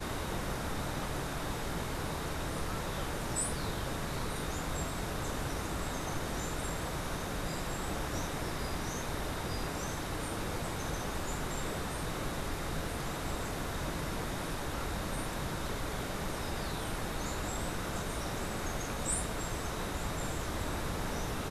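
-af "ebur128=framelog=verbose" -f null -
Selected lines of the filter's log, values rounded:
Integrated loudness:
  I:         -36.7 LUFS
  Threshold: -46.7 LUFS
Loudness range:
  LRA:         1.0 LU
  Threshold: -56.7 LUFS
  LRA low:   -37.1 LUFS
  LRA high:  -36.1 LUFS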